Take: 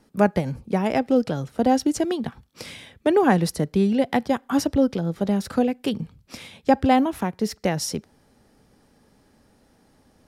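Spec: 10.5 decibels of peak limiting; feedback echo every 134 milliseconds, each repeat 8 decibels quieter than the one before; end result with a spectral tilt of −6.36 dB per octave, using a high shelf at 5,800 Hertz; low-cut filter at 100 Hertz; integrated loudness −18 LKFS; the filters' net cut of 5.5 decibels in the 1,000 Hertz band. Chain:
high-pass filter 100 Hz
parametric band 1,000 Hz −8 dB
high-shelf EQ 5,800 Hz −8.5 dB
brickwall limiter −17.5 dBFS
repeating echo 134 ms, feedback 40%, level −8 dB
level +9.5 dB

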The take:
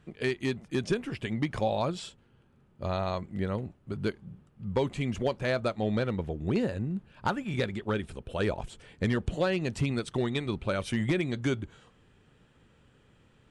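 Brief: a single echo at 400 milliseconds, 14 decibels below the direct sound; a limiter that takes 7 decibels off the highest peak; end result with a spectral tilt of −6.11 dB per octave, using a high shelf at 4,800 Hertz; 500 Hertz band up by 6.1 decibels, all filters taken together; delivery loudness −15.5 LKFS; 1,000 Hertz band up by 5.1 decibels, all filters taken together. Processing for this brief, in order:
parametric band 500 Hz +6.5 dB
parametric band 1,000 Hz +4.5 dB
high-shelf EQ 4,800 Hz −5 dB
brickwall limiter −18 dBFS
single-tap delay 400 ms −14 dB
level +14.5 dB

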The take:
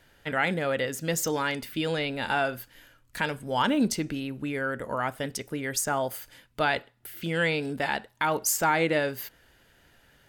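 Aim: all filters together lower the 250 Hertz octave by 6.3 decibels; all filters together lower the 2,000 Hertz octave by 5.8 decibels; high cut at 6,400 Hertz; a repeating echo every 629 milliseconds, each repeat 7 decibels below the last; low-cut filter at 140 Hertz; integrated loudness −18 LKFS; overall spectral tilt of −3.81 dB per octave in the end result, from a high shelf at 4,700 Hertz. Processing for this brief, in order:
high-pass filter 140 Hz
low-pass filter 6,400 Hz
parametric band 250 Hz −7.5 dB
parametric band 2,000 Hz −7 dB
high-shelf EQ 4,700 Hz −3.5 dB
repeating echo 629 ms, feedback 45%, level −7 dB
level +13.5 dB

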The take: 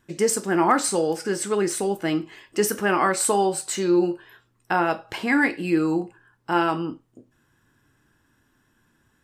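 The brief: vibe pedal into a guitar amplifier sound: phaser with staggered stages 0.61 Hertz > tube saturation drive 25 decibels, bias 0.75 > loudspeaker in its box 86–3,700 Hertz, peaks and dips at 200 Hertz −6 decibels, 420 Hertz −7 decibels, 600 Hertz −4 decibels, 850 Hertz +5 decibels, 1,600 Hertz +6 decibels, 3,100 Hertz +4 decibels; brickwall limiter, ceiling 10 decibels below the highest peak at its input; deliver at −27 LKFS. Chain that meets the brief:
brickwall limiter −15.5 dBFS
phaser with staggered stages 0.61 Hz
tube saturation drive 25 dB, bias 0.75
loudspeaker in its box 86–3,700 Hz, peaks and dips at 200 Hz −6 dB, 420 Hz −7 dB, 600 Hz −4 dB, 850 Hz +5 dB, 1,600 Hz +6 dB, 3,100 Hz +4 dB
level +7.5 dB

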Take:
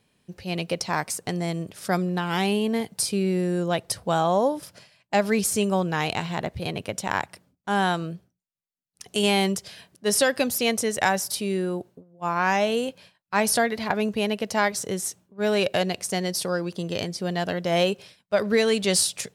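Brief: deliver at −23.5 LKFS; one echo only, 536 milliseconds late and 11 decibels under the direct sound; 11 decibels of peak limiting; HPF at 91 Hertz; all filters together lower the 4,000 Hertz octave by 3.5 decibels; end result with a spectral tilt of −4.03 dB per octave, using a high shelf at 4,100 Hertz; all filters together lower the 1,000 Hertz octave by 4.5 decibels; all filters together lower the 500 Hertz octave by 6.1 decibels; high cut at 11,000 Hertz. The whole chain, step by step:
high-pass filter 91 Hz
low-pass filter 11,000 Hz
parametric band 500 Hz −7 dB
parametric band 1,000 Hz −3 dB
parametric band 4,000 Hz −7.5 dB
high-shelf EQ 4,100 Hz +4.5 dB
brickwall limiter −19.5 dBFS
single-tap delay 536 ms −11 dB
level +6.5 dB

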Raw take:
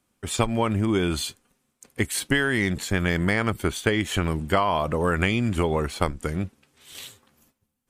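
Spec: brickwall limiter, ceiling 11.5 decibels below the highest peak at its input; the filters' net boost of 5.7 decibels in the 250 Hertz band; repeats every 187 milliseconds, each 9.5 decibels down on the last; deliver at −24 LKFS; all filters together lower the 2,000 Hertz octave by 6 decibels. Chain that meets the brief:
parametric band 250 Hz +7.5 dB
parametric band 2,000 Hz −7.5 dB
brickwall limiter −15.5 dBFS
repeating echo 187 ms, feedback 33%, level −9.5 dB
level +1.5 dB

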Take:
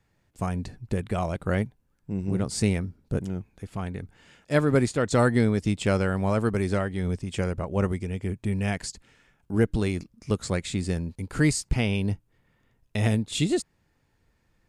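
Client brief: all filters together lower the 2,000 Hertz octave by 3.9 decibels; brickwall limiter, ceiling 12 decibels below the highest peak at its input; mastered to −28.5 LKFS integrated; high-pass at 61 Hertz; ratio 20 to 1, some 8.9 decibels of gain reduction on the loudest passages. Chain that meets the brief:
high-pass filter 61 Hz
parametric band 2,000 Hz −5 dB
downward compressor 20 to 1, threshold −25 dBFS
level +10 dB
brickwall limiter −18.5 dBFS

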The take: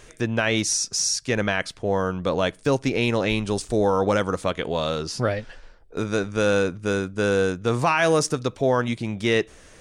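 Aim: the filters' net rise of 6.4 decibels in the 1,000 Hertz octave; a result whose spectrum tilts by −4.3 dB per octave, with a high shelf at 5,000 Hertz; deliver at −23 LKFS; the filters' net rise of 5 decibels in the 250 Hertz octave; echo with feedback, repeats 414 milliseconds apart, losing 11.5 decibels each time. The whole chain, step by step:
parametric band 250 Hz +6 dB
parametric band 1,000 Hz +7.5 dB
high-shelf EQ 5,000 Hz +4 dB
repeating echo 414 ms, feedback 27%, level −11.5 dB
level −3.5 dB

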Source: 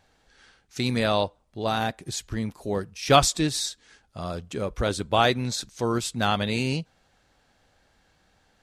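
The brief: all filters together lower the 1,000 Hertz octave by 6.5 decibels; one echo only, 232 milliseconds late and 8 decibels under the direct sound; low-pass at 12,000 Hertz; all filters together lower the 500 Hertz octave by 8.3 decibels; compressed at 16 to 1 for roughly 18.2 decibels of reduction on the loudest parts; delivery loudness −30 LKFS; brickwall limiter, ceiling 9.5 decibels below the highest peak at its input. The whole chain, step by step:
low-pass filter 12,000 Hz
parametric band 500 Hz −9 dB
parametric band 1,000 Hz −5.5 dB
downward compressor 16 to 1, threshold −34 dBFS
brickwall limiter −31 dBFS
single-tap delay 232 ms −8 dB
level +11 dB

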